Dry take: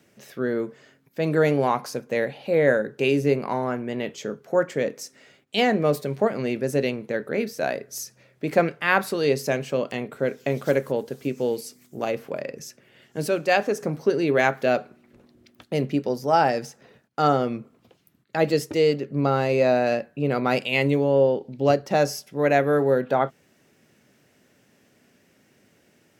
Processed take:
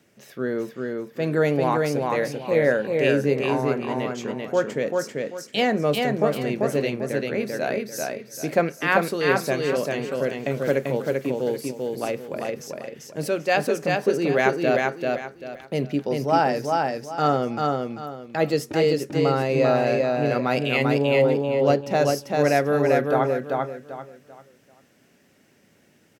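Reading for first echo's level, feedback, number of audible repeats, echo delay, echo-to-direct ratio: −3.0 dB, 29%, 3, 391 ms, −2.5 dB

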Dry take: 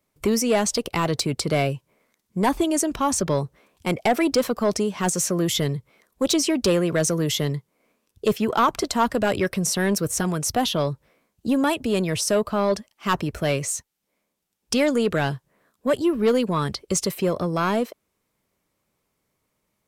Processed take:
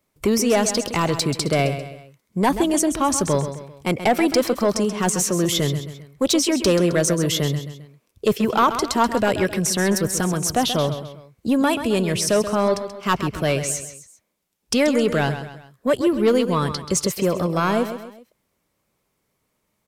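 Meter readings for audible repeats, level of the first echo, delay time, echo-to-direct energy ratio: 3, −10.5 dB, 132 ms, −9.5 dB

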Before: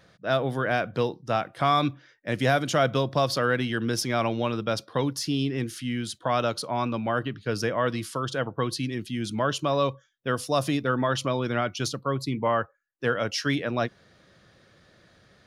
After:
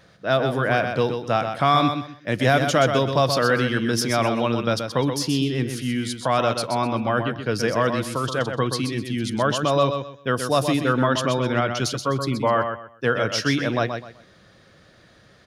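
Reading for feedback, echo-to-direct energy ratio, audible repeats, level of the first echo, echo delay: 25%, −6.5 dB, 3, −7.0 dB, 127 ms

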